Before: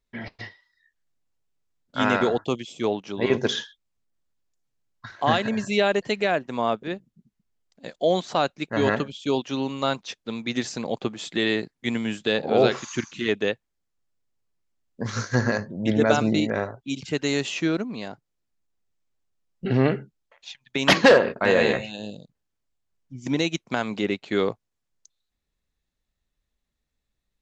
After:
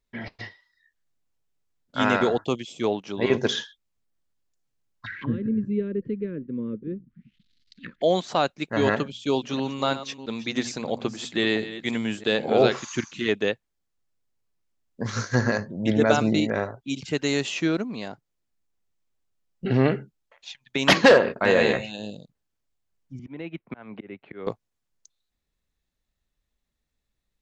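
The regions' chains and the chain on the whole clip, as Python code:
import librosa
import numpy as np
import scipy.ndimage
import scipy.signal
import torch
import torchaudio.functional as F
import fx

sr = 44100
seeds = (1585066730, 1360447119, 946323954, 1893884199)

y = fx.chain(x, sr, fx.law_mismatch(coded='mu'),
    fx.cheby1_bandstop(low_hz=250.0, high_hz=2000.0, order=2),
    fx.envelope_lowpass(base_hz=520.0, top_hz=4800.0, q=4.8, full_db=-33.5, direction='down'), at=(5.06, 8.02))
y = fx.chain(y, sr, fx.reverse_delay(ms=330, wet_db=-13),
    fx.hum_notches(base_hz=60, count=4), at=(8.94, 12.64))
y = fx.chain(y, sr, fx.lowpass(hz=2400.0, slope=24),
    fx.auto_swell(attack_ms=564.0),
    fx.band_squash(depth_pct=40), at=(23.19, 24.47))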